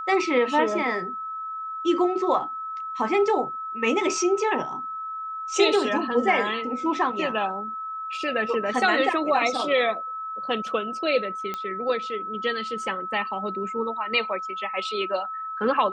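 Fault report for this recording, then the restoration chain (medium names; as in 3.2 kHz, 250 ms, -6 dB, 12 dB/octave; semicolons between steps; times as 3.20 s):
whine 1.3 kHz -30 dBFS
11.54 s: pop -16 dBFS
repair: de-click; band-stop 1.3 kHz, Q 30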